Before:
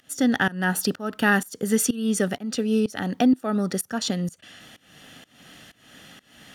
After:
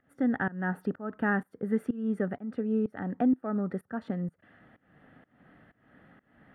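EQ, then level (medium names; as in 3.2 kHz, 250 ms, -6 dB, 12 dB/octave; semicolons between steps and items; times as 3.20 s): distance through air 480 m; high-order bell 4.2 kHz -13.5 dB; -5.5 dB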